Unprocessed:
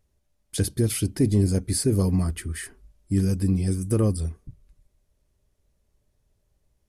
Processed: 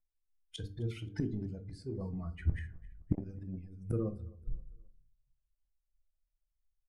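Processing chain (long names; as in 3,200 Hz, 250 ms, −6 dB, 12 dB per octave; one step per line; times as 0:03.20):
spectral dynamics exaggerated over time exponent 2
rotating-speaker cabinet horn 0.75 Hz, later 6.3 Hz, at 0:02.03
in parallel at +2.5 dB: output level in coarse steps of 13 dB
on the sum: mains-hum notches 50/100/150/200/250/300/350/400/450 Hz
gate with flip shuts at −27 dBFS, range −29 dB
low-pass filter 2,500 Hz 12 dB per octave
transient designer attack −5 dB, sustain +4 dB
repeating echo 262 ms, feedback 38%, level −23 dB
rectangular room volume 210 cubic metres, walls furnished, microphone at 0.57 metres
0:03.13–0:03.75: saturating transformer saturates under 250 Hz
level +14 dB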